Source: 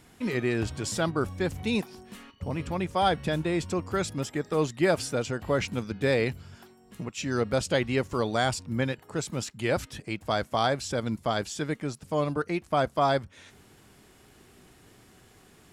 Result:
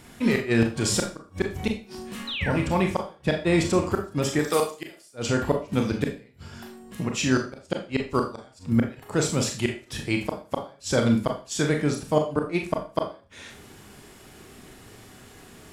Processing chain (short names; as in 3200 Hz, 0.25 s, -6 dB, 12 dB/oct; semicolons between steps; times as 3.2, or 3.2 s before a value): 2.27–2.51 painted sound fall 1300–4200 Hz -39 dBFS; 4.39–5.14 RIAA curve recording; flipped gate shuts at -17 dBFS, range -37 dB; Schroeder reverb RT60 0.35 s, combs from 27 ms, DRR 2.5 dB; gain +6.5 dB